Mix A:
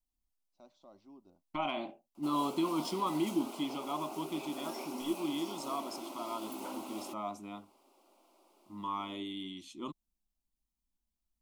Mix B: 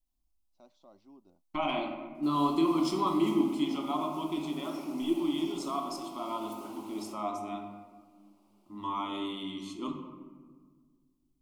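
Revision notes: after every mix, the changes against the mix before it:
background −8.0 dB
reverb: on, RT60 1.6 s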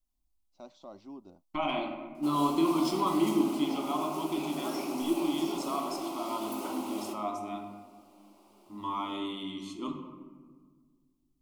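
first voice +10.0 dB
background +10.0 dB

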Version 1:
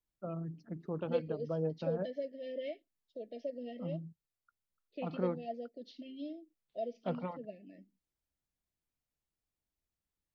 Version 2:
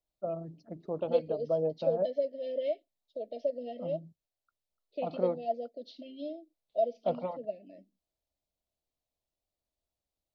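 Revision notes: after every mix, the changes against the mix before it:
master: add graphic EQ with 15 bands 160 Hz −4 dB, 630 Hz +12 dB, 1,600 Hz −9 dB, 4,000 Hz +6 dB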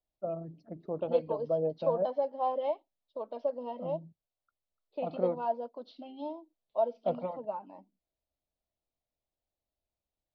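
second voice: remove linear-phase brick-wall band-stop 720–1,700 Hz
master: add high-frequency loss of the air 150 metres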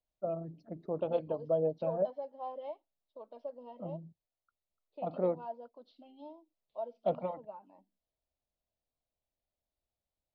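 second voice −10.5 dB

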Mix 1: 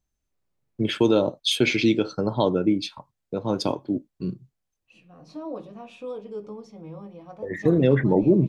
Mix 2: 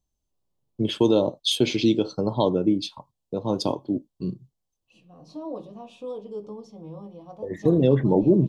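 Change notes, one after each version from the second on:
master: add flat-topped bell 1,800 Hz −11.5 dB 1.1 octaves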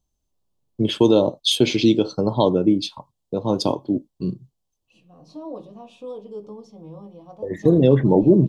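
first voice +4.0 dB

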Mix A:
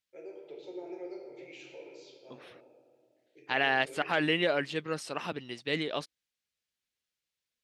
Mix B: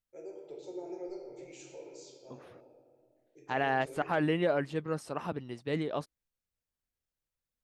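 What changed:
first voice: remove low-pass filter 2,600 Hz 12 dB per octave
master: remove meter weighting curve D

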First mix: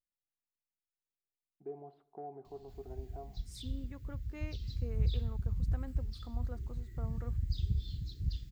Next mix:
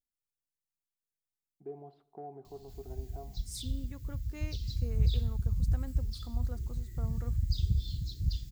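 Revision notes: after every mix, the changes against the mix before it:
master: add bass and treble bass +4 dB, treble +12 dB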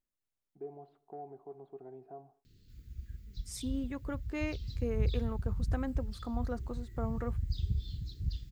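first voice: entry −1.05 s
second voice +10.5 dB
master: add bass and treble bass −4 dB, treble −12 dB

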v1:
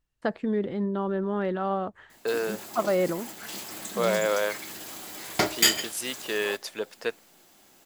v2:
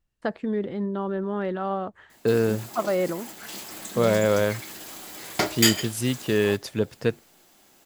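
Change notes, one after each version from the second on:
second voice: remove high-pass filter 590 Hz 12 dB per octave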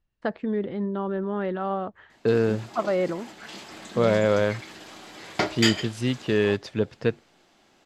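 master: add low-pass filter 4,500 Hz 12 dB per octave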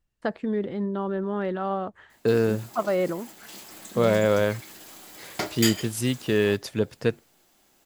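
background −5.5 dB
master: remove low-pass filter 4,500 Hz 12 dB per octave

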